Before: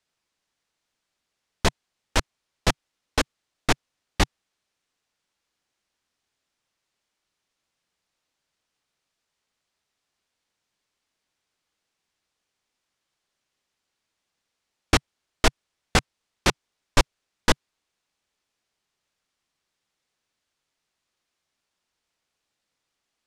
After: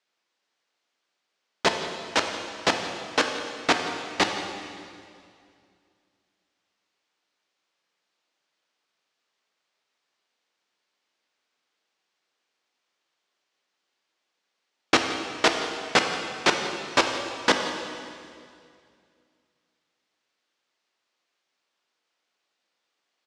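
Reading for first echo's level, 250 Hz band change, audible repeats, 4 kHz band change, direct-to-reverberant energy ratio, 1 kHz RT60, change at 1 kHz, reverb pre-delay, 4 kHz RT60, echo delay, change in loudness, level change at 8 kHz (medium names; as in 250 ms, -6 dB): -17.0 dB, 0.0 dB, 1, +2.5 dB, 4.0 dB, 2.2 s, +3.5 dB, 6 ms, 2.1 s, 173 ms, +1.0 dB, -1.5 dB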